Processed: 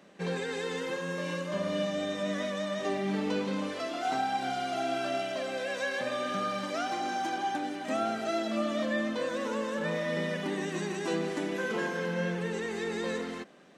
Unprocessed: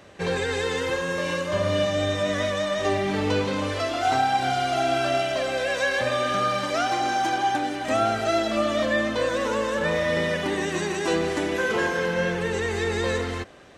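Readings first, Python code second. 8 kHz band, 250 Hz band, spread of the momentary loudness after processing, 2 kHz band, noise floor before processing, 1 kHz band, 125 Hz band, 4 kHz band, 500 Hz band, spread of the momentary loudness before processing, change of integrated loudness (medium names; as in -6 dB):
-9.0 dB, -4.5 dB, 3 LU, -9.0 dB, -30 dBFS, -8.5 dB, -8.5 dB, -9.0 dB, -8.0 dB, 3 LU, -8.0 dB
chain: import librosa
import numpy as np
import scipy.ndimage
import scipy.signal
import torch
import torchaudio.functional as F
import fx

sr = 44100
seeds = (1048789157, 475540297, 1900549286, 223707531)

y = fx.low_shelf_res(x, sr, hz=130.0, db=-12.5, q=3.0)
y = y * librosa.db_to_amplitude(-9.0)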